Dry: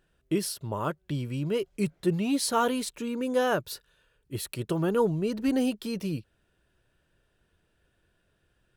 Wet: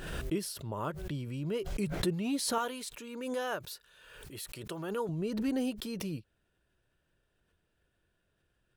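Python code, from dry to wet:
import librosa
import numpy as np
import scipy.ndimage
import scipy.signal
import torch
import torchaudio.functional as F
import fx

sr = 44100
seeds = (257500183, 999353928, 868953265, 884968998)

y = fx.low_shelf(x, sr, hz=390.0, db=-11.5, at=(2.58, 5.09))
y = fx.pre_swell(y, sr, db_per_s=43.0)
y = y * 10.0 ** (-6.5 / 20.0)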